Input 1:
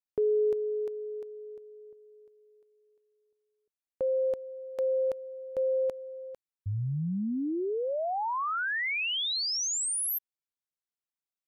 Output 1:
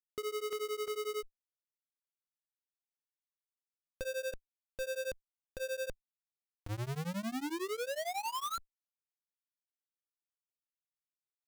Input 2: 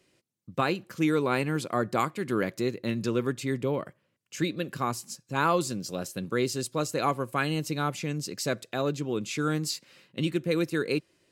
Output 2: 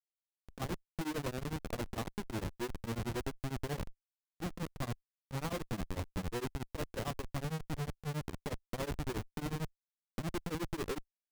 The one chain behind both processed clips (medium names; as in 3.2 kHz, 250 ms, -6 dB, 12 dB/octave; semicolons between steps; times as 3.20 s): low-pass 1.1 kHz 24 dB/octave; compression 20:1, threshold -30 dBFS; Schmitt trigger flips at -36.5 dBFS; tremolo of two beating tones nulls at 11 Hz; trim +2.5 dB